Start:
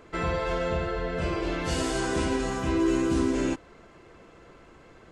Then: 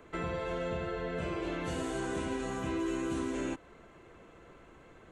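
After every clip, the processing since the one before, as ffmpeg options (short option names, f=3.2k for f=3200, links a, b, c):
-filter_complex "[0:a]equalizer=f=5k:w=4.4:g=-11.5,acrossover=split=91|510|2000[a][b][c][d];[a]acompressor=threshold=-46dB:ratio=4[e];[b]acompressor=threshold=-31dB:ratio=4[f];[c]acompressor=threshold=-37dB:ratio=4[g];[d]acompressor=threshold=-44dB:ratio=4[h];[e][f][g][h]amix=inputs=4:normalize=0,volume=-3.5dB"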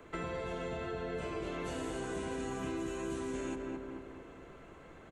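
-filter_complex "[0:a]asplit=2[a][b];[b]adelay=217,lowpass=f=1.7k:p=1,volume=-5dB,asplit=2[c][d];[d]adelay=217,lowpass=f=1.7k:p=1,volume=0.51,asplit=2[e][f];[f]adelay=217,lowpass=f=1.7k:p=1,volume=0.51,asplit=2[g][h];[h]adelay=217,lowpass=f=1.7k:p=1,volume=0.51,asplit=2[i][j];[j]adelay=217,lowpass=f=1.7k:p=1,volume=0.51,asplit=2[k][l];[l]adelay=217,lowpass=f=1.7k:p=1,volume=0.51[m];[a][c][e][g][i][k][m]amix=inputs=7:normalize=0,acrossover=split=190|5200[n][o][p];[n]acompressor=threshold=-47dB:ratio=4[q];[o]acompressor=threshold=-38dB:ratio=4[r];[p]acompressor=threshold=-55dB:ratio=4[s];[q][r][s]amix=inputs=3:normalize=0,volume=1dB"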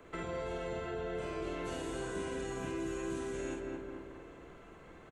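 -filter_complex "[0:a]asplit=2[a][b];[b]adelay=48,volume=-3.5dB[c];[a][c]amix=inputs=2:normalize=0,volume=-2dB"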